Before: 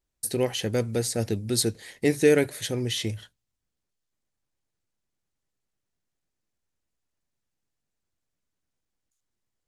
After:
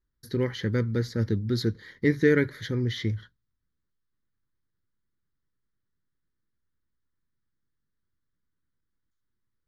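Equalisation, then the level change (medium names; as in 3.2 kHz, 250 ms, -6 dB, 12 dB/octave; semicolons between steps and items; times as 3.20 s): tone controls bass +2 dB, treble -15 dB; dynamic bell 2.1 kHz, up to +5 dB, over -45 dBFS, Q 2.3; static phaser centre 2.6 kHz, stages 6; +2.0 dB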